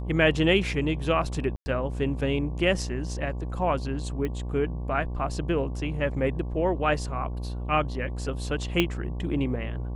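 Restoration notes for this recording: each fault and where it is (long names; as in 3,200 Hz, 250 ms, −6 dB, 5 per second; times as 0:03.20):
mains buzz 60 Hz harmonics 19 −32 dBFS
0:01.56–0:01.66: drop-out 100 ms
0:04.25: click −19 dBFS
0:08.80: click −9 dBFS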